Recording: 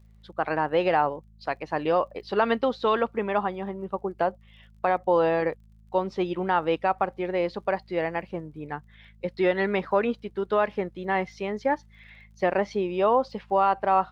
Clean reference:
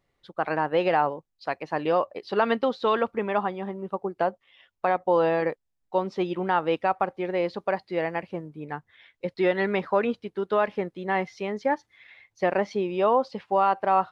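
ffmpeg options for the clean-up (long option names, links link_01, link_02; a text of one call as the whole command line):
ffmpeg -i in.wav -af "adeclick=threshold=4,bandreject=frequency=53.7:width_type=h:width=4,bandreject=frequency=107.4:width_type=h:width=4,bandreject=frequency=161.1:width_type=h:width=4,bandreject=frequency=214.8:width_type=h:width=4" out.wav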